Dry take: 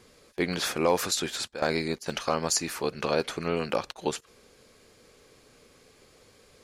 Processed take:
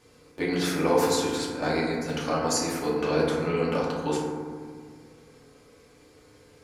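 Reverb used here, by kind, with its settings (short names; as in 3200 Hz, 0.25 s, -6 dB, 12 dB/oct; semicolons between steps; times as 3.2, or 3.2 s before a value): FDN reverb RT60 1.8 s, low-frequency decay 1.45×, high-frequency decay 0.3×, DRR -6 dB; gain -5.5 dB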